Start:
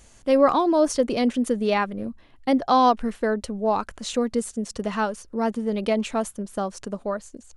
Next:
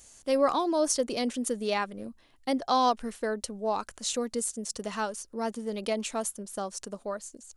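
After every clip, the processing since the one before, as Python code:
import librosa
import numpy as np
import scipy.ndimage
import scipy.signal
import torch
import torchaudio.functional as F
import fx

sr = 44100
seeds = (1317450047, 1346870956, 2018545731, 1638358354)

y = fx.bass_treble(x, sr, bass_db=-5, treble_db=11)
y = y * librosa.db_to_amplitude(-6.5)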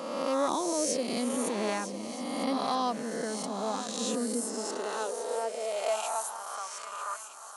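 y = fx.spec_swells(x, sr, rise_s=1.73)
y = fx.echo_swing(y, sr, ms=1268, ratio=3, feedback_pct=31, wet_db=-11.0)
y = fx.filter_sweep_highpass(y, sr, from_hz=170.0, to_hz=1100.0, start_s=3.77, end_s=6.54, q=3.1)
y = y * librosa.db_to_amplitude(-8.0)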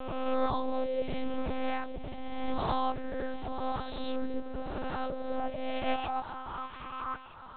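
y = fx.lpc_monotone(x, sr, seeds[0], pitch_hz=260.0, order=8)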